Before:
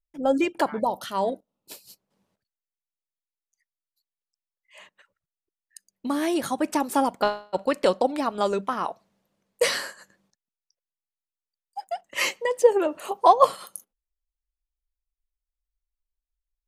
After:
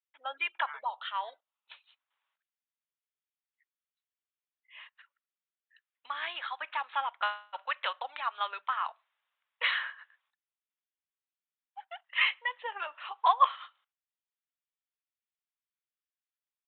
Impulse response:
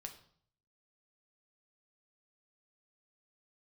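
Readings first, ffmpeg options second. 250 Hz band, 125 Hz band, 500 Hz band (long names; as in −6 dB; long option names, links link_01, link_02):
below −40 dB, below −40 dB, −23.5 dB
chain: -af "highpass=frequency=1100:width=0.5412,highpass=frequency=1100:width=1.3066,aresample=8000,aresample=44100"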